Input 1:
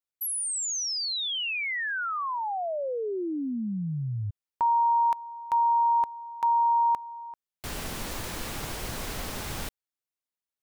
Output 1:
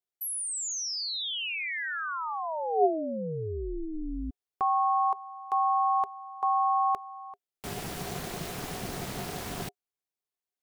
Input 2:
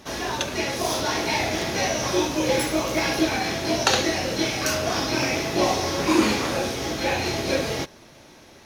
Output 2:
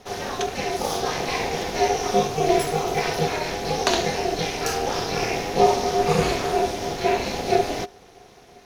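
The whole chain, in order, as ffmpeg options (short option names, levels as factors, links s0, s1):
-af "equalizer=f=560:w=7.6:g=14.5,aeval=exprs='val(0)*sin(2*PI*160*n/s)':c=same"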